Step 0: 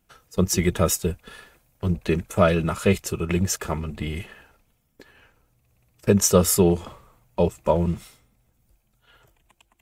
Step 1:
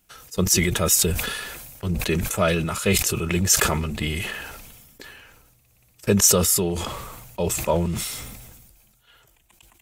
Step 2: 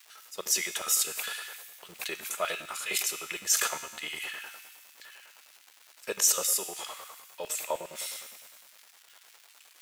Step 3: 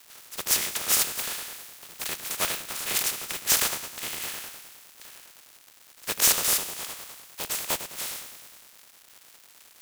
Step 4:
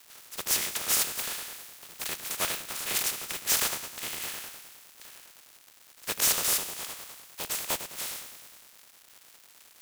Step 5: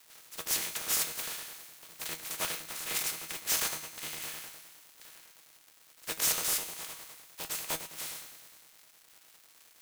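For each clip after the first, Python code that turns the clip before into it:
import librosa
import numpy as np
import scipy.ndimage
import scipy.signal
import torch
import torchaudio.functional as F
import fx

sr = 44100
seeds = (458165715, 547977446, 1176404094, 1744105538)

y1 = fx.rider(x, sr, range_db=5, speed_s=0.5)
y1 = fx.high_shelf(y1, sr, hz=2200.0, db=10.0)
y1 = fx.sustainer(y1, sr, db_per_s=35.0)
y1 = y1 * 10.0 ** (-3.5 / 20.0)
y2 = fx.dmg_crackle(y1, sr, seeds[0], per_s=520.0, level_db=-34.0)
y2 = fx.comb_fb(y2, sr, f0_hz=77.0, decay_s=1.3, harmonics='all', damping=0.0, mix_pct=70)
y2 = fx.filter_lfo_highpass(y2, sr, shape='square', hz=9.8, low_hz=650.0, high_hz=1800.0, q=0.82)
y2 = y2 * 10.0 ** (2.0 / 20.0)
y3 = fx.spec_flatten(y2, sr, power=0.23)
y3 = y3 * 10.0 ** (4.0 / 20.0)
y4 = np.clip(y3, -10.0 ** (-17.0 / 20.0), 10.0 ** (-17.0 / 20.0))
y4 = y4 * 10.0 ** (-2.0 / 20.0)
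y5 = fx.comb_fb(y4, sr, f0_hz=160.0, decay_s=0.17, harmonics='all', damping=0.0, mix_pct=70)
y5 = y5 * 10.0 ** (2.0 / 20.0)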